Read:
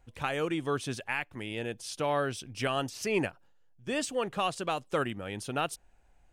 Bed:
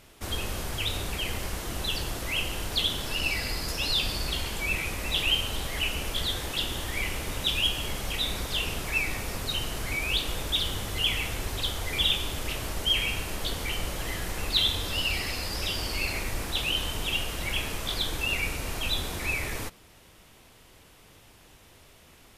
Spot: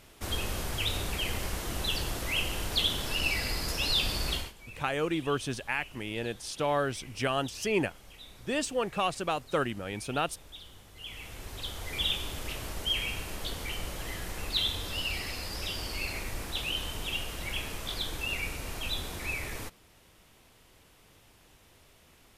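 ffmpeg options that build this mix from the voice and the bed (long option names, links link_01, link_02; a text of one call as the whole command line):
ffmpeg -i stem1.wav -i stem2.wav -filter_complex "[0:a]adelay=4600,volume=1dB[link_01];[1:a]volume=14.5dB,afade=type=out:start_time=4.33:duration=0.2:silence=0.105925,afade=type=in:start_time=10.95:duration=1.12:silence=0.16788[link_02];[link_01][link_02]amix=inputs=2:normalize=0" out.wav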